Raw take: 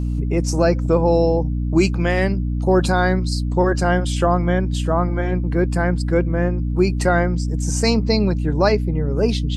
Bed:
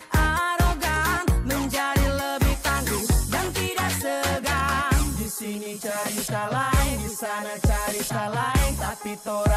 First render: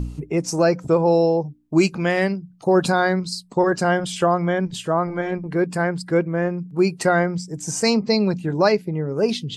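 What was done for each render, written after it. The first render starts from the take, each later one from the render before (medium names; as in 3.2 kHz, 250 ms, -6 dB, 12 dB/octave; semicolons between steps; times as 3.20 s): de-hum 60 Hz, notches 5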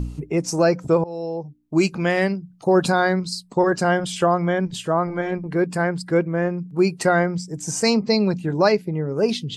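1.04–1.99 s: fade in, from -21 dB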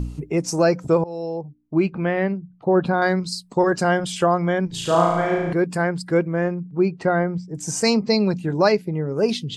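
1.41–3.02 s: distance through air 470 m; 4.68–5.53 s: flutter echo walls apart 6.1 m, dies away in 1.1 s; 6.54–7.55 s: tape spacing loss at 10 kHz 29 dB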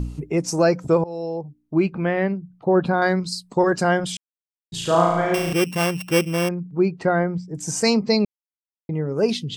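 4.17–4.72 s: mute; 5.34–6.49 s: sorted samples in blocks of 16 samples; 8.25–8.89 s: mute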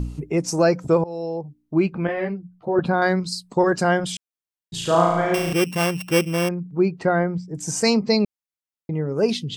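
2.07–2.79 s: three-phase chorus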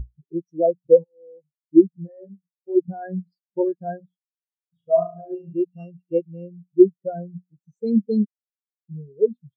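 in parallel at +1 dB: compression, threshold -26 dBFS, peak gain reduction 13 dB; on the sum: spectral contrast expander 4:1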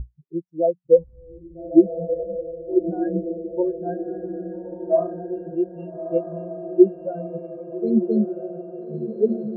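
distance through air 360 m; on a send: echo that smears into a reverb 1283 ms, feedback 54%, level -7.5 dB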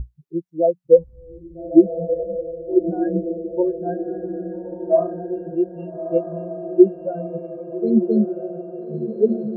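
trim +2.5 dB; peak limiter -1 dBFS, peak gain reduction 1.5 dB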